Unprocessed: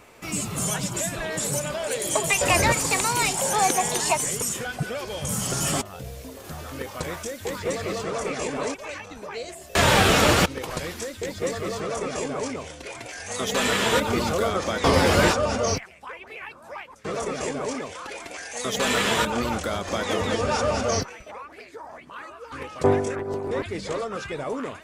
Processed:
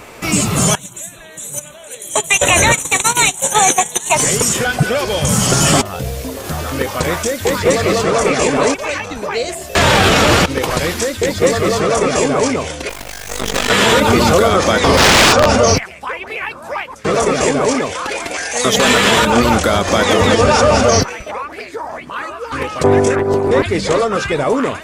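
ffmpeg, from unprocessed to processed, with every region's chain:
ffmpeg -i in.wav -filter_complex "[0:a]asettb=1/sr,asplit=3[link_01][link_02][link_03];[link_01]atrim=end=0.754[link_04];[link_02]atrim=start=0.75:end=4.15,asetpts=PTS-STARTPTS,afade=type=in:duration=0.004:curve=qsin,afade=type=out:start_time=3.396:duration=0.004:curve=qsin,agate=range=-24dB:threshold=-23dB:ratio=16:release=100:detection=peak,asuperstop=centerf=4900:order=12:qfactor=3.1,highshelf=frequency=3100:gain=11.5[link_05];[link_03]atrim=start=4.146[link_06];[link_04][link_05]acrossfade=duration=0.004:curve1=hsin:curve2=qsin[link_07];[link_07][link_06]acrossfade=duration=0.004:curve1=qsin:curve2=hsin,asettb=1/sr,asplit=3[link_08][link_09][link_10];[link_08]atrim=end=12.894[link_11];[link_09]atrim=start=12.89:end=13.7,asetpts=PTS-STARTPTS,afade=type=in:duration=0.004:curve=qsin,afade=type=out:start_time=0.806:duration=0.004:curve=qsin,acrusher=bits=4:dc=4:mix=0:aa=0.000001,tremolo=f=49:d=0.857[link_12];[link_10]atrim=start=13.696[link_13];[link_11][link_12]acrossfade=duration=0.004:curve1=hsin:curve2=qsin[link_14];[link_14][link_13]acrossfade=duration=0.004:curve1=qsin:curve2=hsin,asettb=1/sr,asplit=3[link_15][link_16][link_17];[link_15]atrim=end=14.974[link_18];[link_16]atrim=start=14.97:end=15.46,asetpts=PTS-STARTPTS,afade=type=in:duration=0.004:curve=qsin,afade=type=out:start_time=0.486:duration=0.004:curve=qsin,lowpass=9500,aeval=exprs='(mod(5.62*val(0)+1,2)-1)/5.62':channel_layout=same[link_19];[link_17]atrim=start=15.456[link_20];[link_18][link_19]acrossfade=duration=0.004:curve1=hsin:curve2=qsin[link_21];[link_21][link_20]acrossfade=duration=0.004:curve1=qsin:curve2=hsin,acrossover=split=7800[link_22][link_23];[link_23]acompressor=threshold=-38dB:ratio=4:attack=1:release=60[link_24];[link_22][link_24]amix=inputs=2:normalize=0,alimiter=level_in=15.5dB:limit=-1dB:release=50:level=0:latency=1,volume=-1dB" out.wav

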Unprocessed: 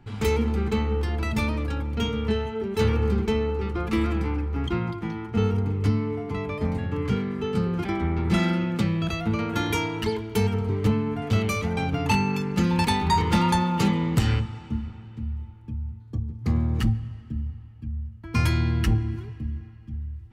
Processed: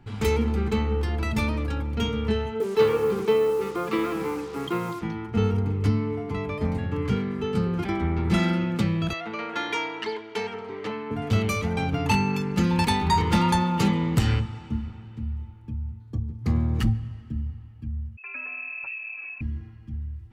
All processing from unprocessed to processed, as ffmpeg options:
ffmpeg -i in.wav -filter_complex "[0:a]asettb=1/sr,asplit=3[link_01][link_02][link_03];[link_01]atrim=end=2.604[link_04];[link_02]atrim=start=2.6:end=5.02,asetpts=PTS-STARTPTS,afade=type=in:duration=0.004:curve=qsin,afade=type=out:start_time=2.416:duration=0.004:curve=qsin,highpass=frequency=150:width=0.5412,highpass=frequency=150:width=1.3066,equalizer=frequency=230:width_type=q:width=4:gain=-9,equalizer=frequency=470:width_type=q:width=4:gain=9,equalizer=frequency=1100:width_type=q:width=4:gain=7,lowpass=frequency=5000:width=0.5412,lowpass=frequency=5000:width=1.3066,acrusher=bits=6:mix=0:aa=0.5[link_05];[link_03]atrim=start=5.016[link_06];[link_04][link_05]acrossfade=duration=0.004:curve1=hsin:curve2=qsin[link_07];[link_07][link_06]acrossfade=duration=0.004:curve1=qsin:curve2=hsin,asettb=1/sr,asplit=3[link_08][link_09][link_10];[link_08]atrim=end=9.134[link_11];[link_09]atrim=start=9.13:end=11.11,asetpts=PTS-STARTPTS,afade=type=in:duration=0.004:curve=qsin,afade=type=out:start_time=1.976:duration=0.004:curve=qsin,highpass=460,lowpass=4700,equalizer=frequency=1900:width=4.9:gain=4[link_12];[link_10]atrim=start=11.106[link_13];[link_11][link_12]acrossfade=duration=0.004:curve1=hsin:curve2=qsin[link_14];[link_14][link_13]acrossfade=duration=0.004:curve1=qsin:curve2=hsin,asettb=1/sr,asplit=3[link_15][link_16][link_17];[link_15]atrim=end=18.174[link_18];[link_16]atrim=start=18.17:end=19.41,asetpts=PTS-STARTPTS,afade=type=in:duration=0.004:curve=qsin,afade=type=out:start_time=1.236:duration=0.004:curve=qsin,acompressor=threshold=-33dB:ratio=6:attack=3.2:release=140:knee=1:detection=peak,lowpass=frequency=2300:width_type=q:width=0.5098,lowpass=frequency=2300:width_type=q:width=0.6013,lowpass=frequency=2300:width_type=q:width=0.9,lowpass=frequency=2300:width_type=q:width=2.563,afreqshift=-2700[link_19];[link_17]atrim=start=19.406[link_20];[link_18][link_19]acrossfade=duration=0.004:curve1=hsin:curve2=qsin[link_21];[link_21][link_20]acrossfade=duration=0.004:curve1=qsin:curve2=hsin" out.wav

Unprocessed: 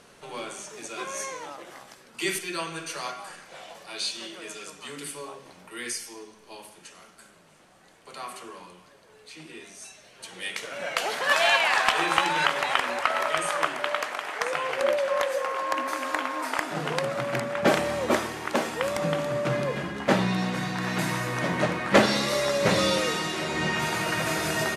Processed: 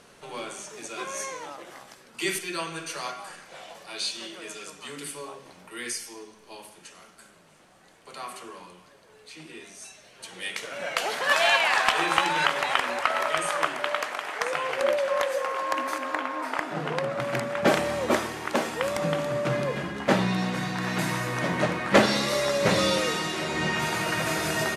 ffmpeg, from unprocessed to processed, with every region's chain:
ffmpeg -i in.wav -filter_complex "[0:a]asettb=1/sr,asplit=3[link_01][link_02][link_03];[link_01]atrim=end=15.984[link_04];[link_02]atrim=start=15.98:end=17.2,asetpts=PTS-STARTPTS,afade=type=in:duration=0.004:curve=qsin,afade=type=out:start_time=1.216:duration=0.004:curve=qsin,highpass=71,highshelf=frequency=4100:gain=-10.5[link_05];[link_03]atrim=start=17.196[link_06];[link_04][link_05]acrossfade=duration=0.004:curve1=hsin:curve2=qsin[link_07];[link_07][link_06]acrossfade=duration=0.004:curve1=qsin:curve2=hsin" out.wav

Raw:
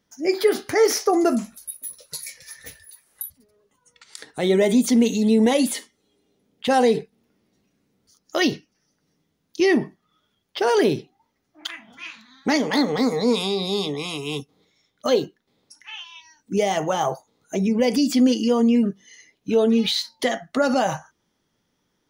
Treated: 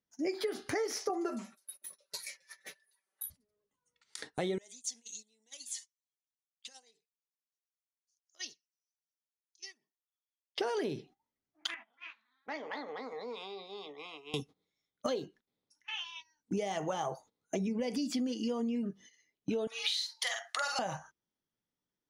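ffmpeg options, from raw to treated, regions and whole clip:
ffmpeg -i in.wav -filter_complex "[0:a]asettb=1/sr,asplit=3[link_01][link_02][link_03];[link_01]atrim=end=1.094[link_04];[link_02]atrim=start=1.09:end=3.22,asetpts=PTS-STARTPTS,afade=type=in:duration=0.004:curve=qsin,afade=type=out:start_time=2.126:duration=0.004:curve=qsin,highpass=390,highshelf=frequency=4400:gain=-9.5,aecho=1:1:5.2:0.8,atrim=end_sample=93933[link_05];[link_03]atrim=start=3.216[link_06];[link_04][link_05]acrossfade=duration=0.004:curve1=hsin:curve2=qsin[link_07];[link_07][link_06]acrossfade=duration=0.004:curve1=qsin:curve2=hsin,asettb=1/sr,asplit=3[link_08][link_09][link_10];[link_08]atrim=end=4.584[link_11];[link_09]atrim=start=4.58:end=10.58,asetpts=PTS-STARTPTS,afade=type=in:duration=0.004:curve=qsin,afade=type=out:start_time=5.996:duration=0.004:curve=qsin,acompressor=threshold=-26dB:ratio=2:attack=3.2:release=140:knee=1:detection=peak,aphaser=in_gain=1:out_gain=1:delay=1.2:decay=0.39:speed=1.3:type=sinusoidal,bandpass=frequency=6700:width_type=q:width=2.6[link_12];[link_10]atrim=start=10.576[link_13];[link_11][link_12]acrossfade=duration=0.004:curve1=hsin:curve2=qsin[link_14];[link_14][link_13]acrossfade=duration=0.004:curve1=qsin:curve2=hsin,asettb=1/sr,asplit=3[link_15][link_16][link_17];[link_15]atrim=end=11.744[link_18];[link_16]atrim=start=11.74:end=14.34,asetpts=PTS-STARTPTS,afade=type=in:duration=0.004:curve=qsin,afade=type=out:start_time=2.596:duration=0.004:curve=qsin,acompressor=threshold=-39dB:ratio=2:attack=3.2:release=140:knee=1:detection=peak,highpass=560,lowpass=2500[link_19];[link_17]atrim=start=14.336[link_20];[link_18][link_19]acrossfade=duration=0.004:curve1=hsin:curve2=qsin[link_21];[link_21][link_20]acrossfade=duration=0.004:curve1=qsin:curve2=hsin,asettb=1/sr,asplit=3[link_22][link_23][link_24];[link_22]atrim=end=19.674[link_25];[link_23]atrim=start=19.67:end=20.79,asetpts=PTS-STARTPTS,afade=type=in:duration=0.004:curve=qsin,afade=type=out:start_time=1.116:duration=0.004:curve=qsin,highpass=frequency=840:width=0.5412,highpass=frequency=840:width=1.3066,highshelf=frequency=2300:gain=8.5,asplit=2[link_26][link_27];[link_27]adelay=46,volume=-4dB[link_28];[link_26][link_28]amix=inputs=2:normalize=0,atrim=end_sample=49392[link_29];[link_24]atrim=start=20.786[link_30];[link_25][link_29]acrossfade=duration=0.004:curve1=hsin:curve2=qsin[link_31];[link_31][link_30]acrossfade=duration=0.004:curve1=qsin:curve2=hsin,agate=range=-18dB:threshold=-43dB:ratio=16:detection=peak,lowpass=11000,acompressor=threshold=-28dB:ratio=12,volume=-3dB" out.wav

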